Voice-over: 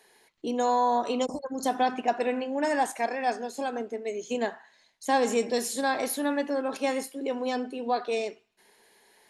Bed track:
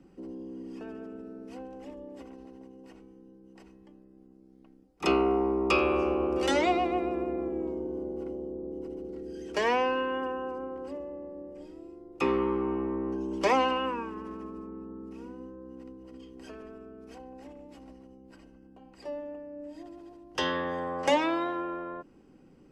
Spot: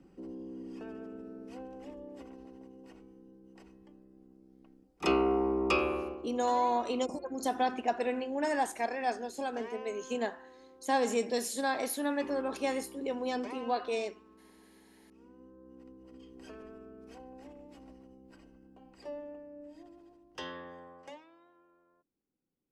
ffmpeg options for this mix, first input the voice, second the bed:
ffmpeg -i stem1.wav -i stem2.wav -filter_complex "[0:a]adelay=5800,volume=-4.5dB[link_01];[1:a]volume=13.5dB,afade=type=out:start_time=5.68:duration=0.55:silence=0.141254,afade=type=in:start_time=15.02:duration=1.47:silence=0.158489,afade=type=out:start_time=18.86:duration=2.39:silence=0.0375837[link_02];[link_01][link_02]amix=inputs=2:normalize=0" out.wav

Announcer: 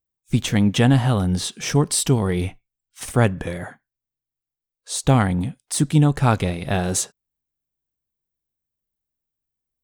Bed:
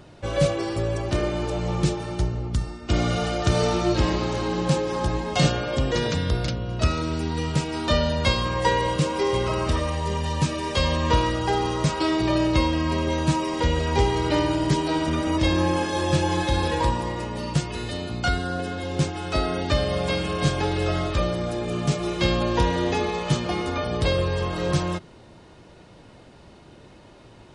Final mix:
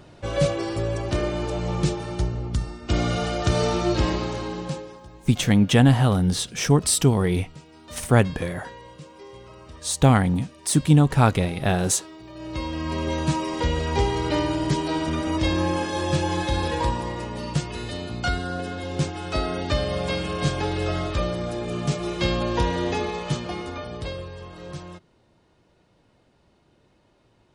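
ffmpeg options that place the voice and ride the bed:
ffmpeg -i stem1.wav -i stem2.wav -filter_complex "[0:a]adelay=4950,volume=0dB[link_01];[1:a]volume=18.5dB,afade=type=out:start_time=4.08:duration=0.93:silence=0.1,afade=type=in:start_time=12.34:duration=0.76:silence=0.112202,afade=type=out:start_time=22.93:duration=1.39:silence=0.251189[link_02];[link_01][link_02]amix=inputs=2:normalize=0" out.wav

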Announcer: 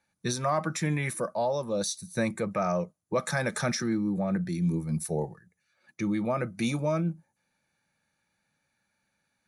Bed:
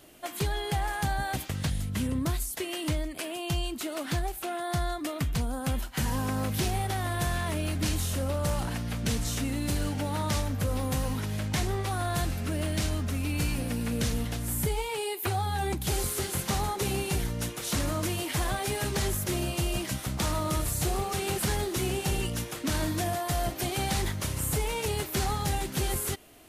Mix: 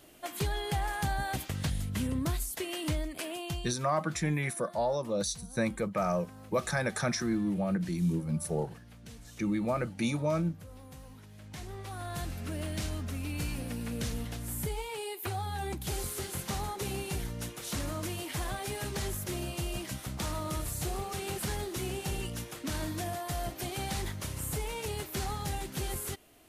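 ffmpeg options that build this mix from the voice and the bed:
ffmpeg -i stem1.wav -i stem2.wav -filter_complex "[0:a]adelay=3400,volume=-2dB[link_01];[1:a]volume=11.5dB,afade=type=out:start_time=3.34:duration=0.44:silence=0.133352,afade=type=in:start_time=11.35:duration=1.15:silence=0.199526[link_02];[link_01][link_02]amix=inputs=2:normalize=0" out.wav

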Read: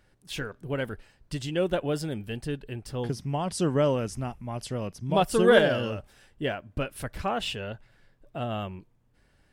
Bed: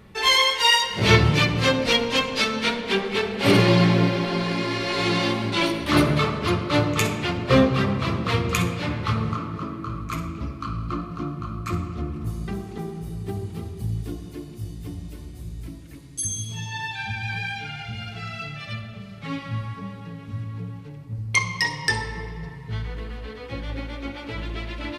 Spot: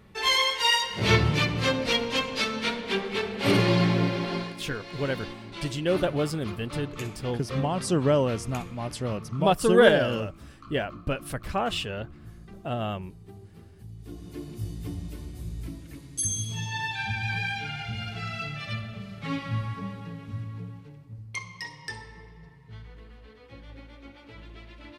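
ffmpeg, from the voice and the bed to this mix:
ffmpeg -i stem1.wav -i stem2.wav -filter_complex "[0:a]adelay=4300,volume=1.5dB[link_01];[1:a]volume=11dB,afade=type=out:start_time=4.35:duration=0.2:silence=0.266073,afade=type=in:start_time=13.98:duration=0.52:silence=0.158489,afade=type=out:start_time=19.82:duration=1.55:silence=0.199526[link_02];[link_01][link_02]amix=inputs=2:normalize=0" out.wav

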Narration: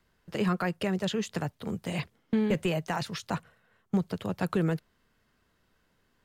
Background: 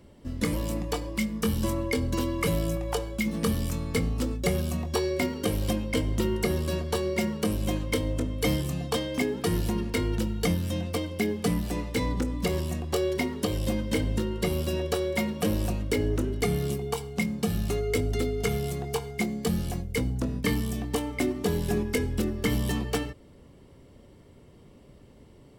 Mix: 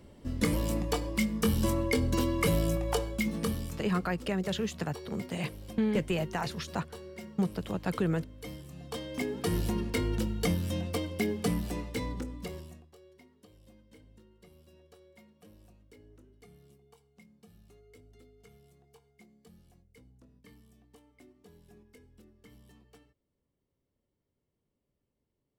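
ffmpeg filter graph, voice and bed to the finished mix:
ffmpeg -i stem1.wav -i stem2.wav -filter_complex "[0:a]adelay=3450,volume=-2dB[link_01];[1:a]volume=14dB,afade=type=out:start_time=3.01:duration=0.94:silence=0.141254,afade=type=in:start_time=8.7:duration=0.87:silence=0.188365,afade=type=out:start_time=11.43:duration=1.49:silence=0.0421697[link_02];[link_01][link_02]amix=inputs=2:normalize=0" out.wav

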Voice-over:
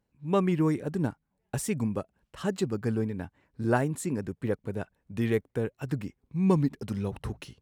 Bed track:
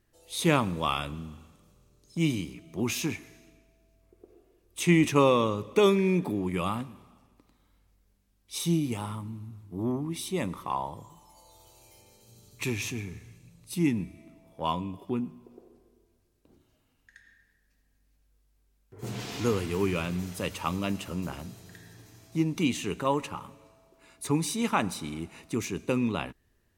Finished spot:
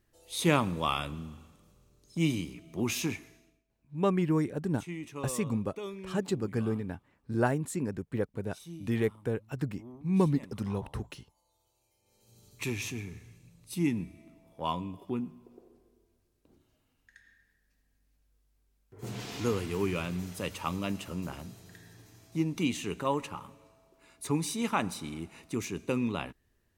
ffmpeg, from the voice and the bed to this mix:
ffmpeg -i stem1.wav -i stem2.wav -filter_complex "[0:a]adelay=3700,volume=-2dB[link_01];[1:a]volume=14dB,afade=type=out:start_time=3.13:duration=0.51:silence=0.141254,afade=type=in:start_time=12.01:duration=0.45:silence=0.16788[link_02];[link_01][link_02]amix=inputs=2:normalize=0" out.wav

